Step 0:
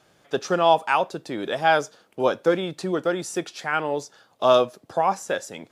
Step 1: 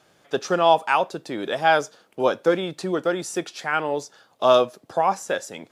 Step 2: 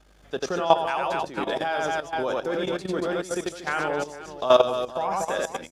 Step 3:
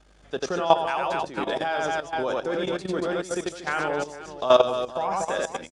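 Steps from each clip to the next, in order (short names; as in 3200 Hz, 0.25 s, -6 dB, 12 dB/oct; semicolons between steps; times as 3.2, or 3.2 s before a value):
low shelf 120 Hz -5 dB; gain +1 dB
reverse bouncing-ball echo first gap 90 ms, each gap 1.6×, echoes 5; hum 50 Hz, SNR 31 dB; level quantiser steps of 13 dB
downsampling 22050 Hz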